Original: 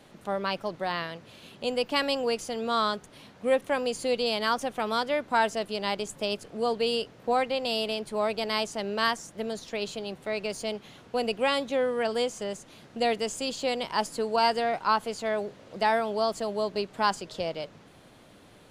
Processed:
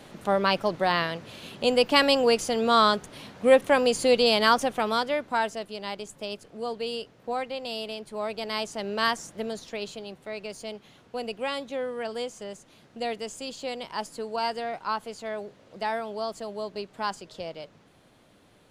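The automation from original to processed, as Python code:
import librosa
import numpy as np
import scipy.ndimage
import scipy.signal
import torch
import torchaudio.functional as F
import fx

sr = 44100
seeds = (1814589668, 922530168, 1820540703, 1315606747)

y = fx.gain(x, sr, db=fx.line((4.48, 6.5), (5.71, -5.0), (8.08, -5.0), (9.23, 2.0), (10.21, -5.0)))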